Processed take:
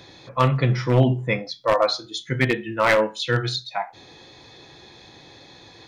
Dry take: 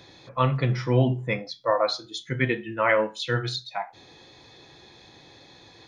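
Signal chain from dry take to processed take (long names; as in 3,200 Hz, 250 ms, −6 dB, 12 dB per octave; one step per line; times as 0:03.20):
wavefolder on the positive side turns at −16 dBFS
level +4 dB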